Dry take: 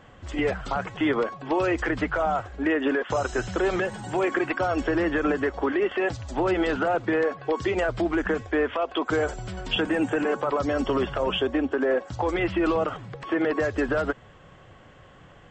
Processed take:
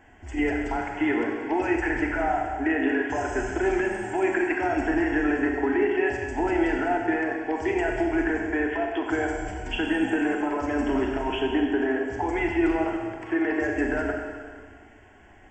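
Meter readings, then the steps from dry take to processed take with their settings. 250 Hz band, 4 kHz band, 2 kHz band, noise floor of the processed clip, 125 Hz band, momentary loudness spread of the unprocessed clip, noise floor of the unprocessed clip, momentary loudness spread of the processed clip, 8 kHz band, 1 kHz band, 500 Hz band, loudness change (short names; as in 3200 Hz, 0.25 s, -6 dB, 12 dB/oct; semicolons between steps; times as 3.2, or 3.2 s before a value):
+2.0 dB, -5.5 dB, +1.5 dB, -51 dBFS, -3.5 dB, 4 LU, -51 dBFS, 4 LU, n/a, 0.0 dB, -1.5 dB, 0.0 dB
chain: fixed phaser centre 790 Hz, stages 8; Schroeder reverb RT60 1.8 s, combs from 30 ms, DRR 1 dB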